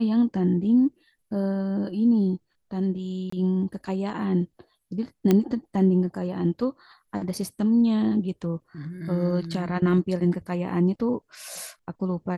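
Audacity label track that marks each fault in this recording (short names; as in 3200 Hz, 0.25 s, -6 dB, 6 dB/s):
3.300000	3.320000	gap 24 ms
5.310000	5.310000	pop -8 dBFS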